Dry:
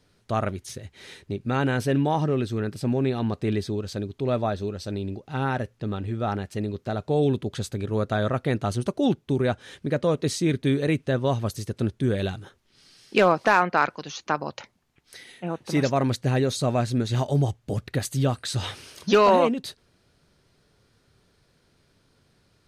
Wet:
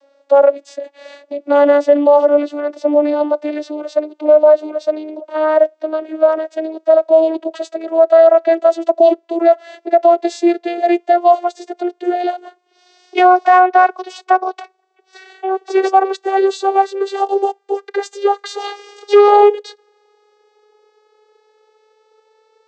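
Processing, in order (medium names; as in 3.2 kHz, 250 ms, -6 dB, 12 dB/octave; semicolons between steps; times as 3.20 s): vocoder on a note that slides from C#4, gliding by +8 st; resonant high-pass 590 Hz, resonance Q 5.4; loudness maximiser +12.5 dB; trim -1 dB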